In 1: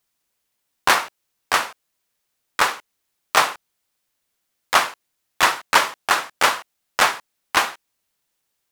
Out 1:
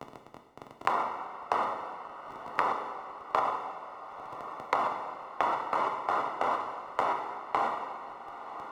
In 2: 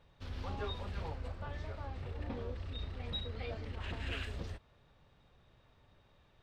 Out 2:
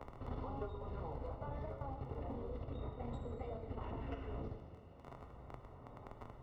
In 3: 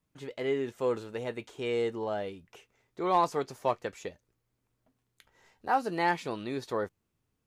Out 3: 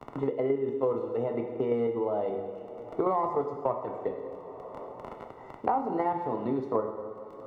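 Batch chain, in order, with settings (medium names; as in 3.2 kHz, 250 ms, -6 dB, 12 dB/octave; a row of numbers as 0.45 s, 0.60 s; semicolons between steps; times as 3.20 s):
self-modulated delay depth 0.066 ms; gate -41 dBFS, range -15 dB; bass shelf 81 Hz -10.5 dB; hum notches 50/100/150/200/250/300/350/400 Hz; peak limiter -12 dBFS; level held to a coarse grid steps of 10 dB; crackle 17 per s -46 dBFS; Savitzky-Golay filter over 65 samples; two-slope reverb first 0.88 s, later 2.7 s, from -21 dB, DRR 3.5 dB; three bands compressed up and down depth 100%; trim +6 dB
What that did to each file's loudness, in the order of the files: -12.5 LU, -4.5 LU, +1.0 LU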